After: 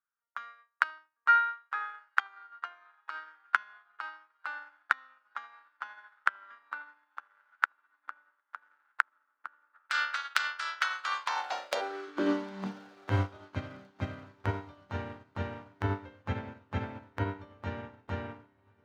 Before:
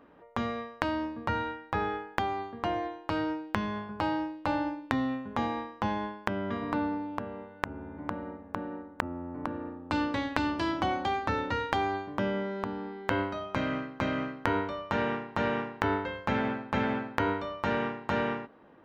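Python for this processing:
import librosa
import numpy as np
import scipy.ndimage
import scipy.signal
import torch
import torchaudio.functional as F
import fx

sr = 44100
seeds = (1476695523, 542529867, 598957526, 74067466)

y = fx.spec_clip(x, sr, under_db=28, at=(9.73, 11.8), fade=0.02)
y = fx.echo_wet_lowpass(y, sr, ms=78, feedback_pct=52, hz=770.0, wet_db=-12)
y = fx.filter_sweep_highpass(y, sr, from_hz=1400.0, to_hz=89.0, start_s=11.0, end_s=13.27, q=6.9)
y = fx.echo_diffused(y, sr, ms=1221, feedback_pct=55, wet_db=-11.0)
y = fx.upward_expand(y, sr, threshold_db=-44.0, expansion=2.5)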